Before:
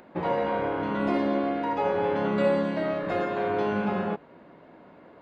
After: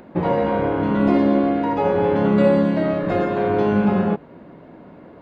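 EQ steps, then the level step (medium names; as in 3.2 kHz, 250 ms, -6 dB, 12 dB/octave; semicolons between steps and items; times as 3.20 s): bass shelf 390 Hz +10.5 dB; +3.0 dB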